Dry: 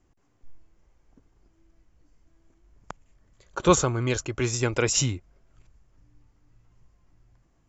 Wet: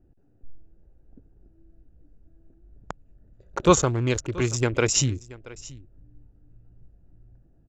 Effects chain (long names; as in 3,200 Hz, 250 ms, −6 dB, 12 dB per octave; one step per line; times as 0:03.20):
adaptive Wiener filter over 41 samples
in parallel at −1 dB: downward compressor, threshold −43 dBFS, peak gain reduction 27 dB
on the sum: single-tap delay 679 ms −20 dB
level +1.5 dB